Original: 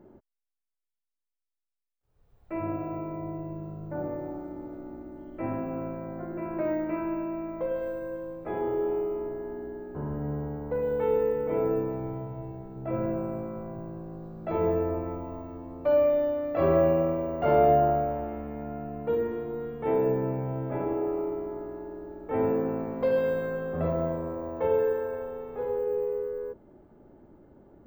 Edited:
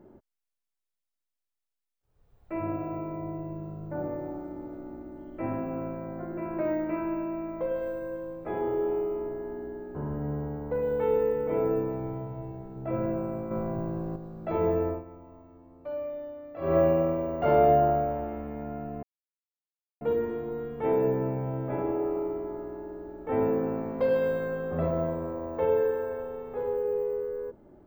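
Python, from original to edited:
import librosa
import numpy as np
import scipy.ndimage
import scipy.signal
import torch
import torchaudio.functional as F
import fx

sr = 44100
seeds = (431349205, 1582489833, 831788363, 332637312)

y = fx.edit(x, sr, fx.clip_gain(start_s=13.51, length_s=0.65, db=6.5),
    fx.fade_down_up(start_s=14.88, length_s=1.89, db=-12.5, fade_s=0.16),
    fx.insert_silence(at_s=19.03, length_s=0.98), tone=tone)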